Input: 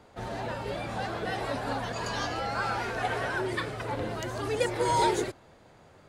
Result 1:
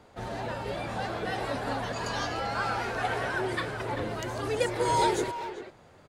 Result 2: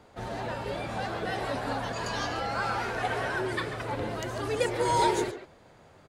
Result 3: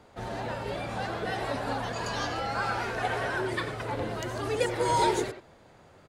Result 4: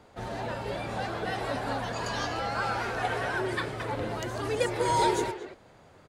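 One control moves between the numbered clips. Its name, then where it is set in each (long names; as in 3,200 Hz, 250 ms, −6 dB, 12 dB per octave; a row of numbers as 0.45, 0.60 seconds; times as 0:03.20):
far-end echo of a speakerphone, delay time: 390, 140, 90, 230 milliseconds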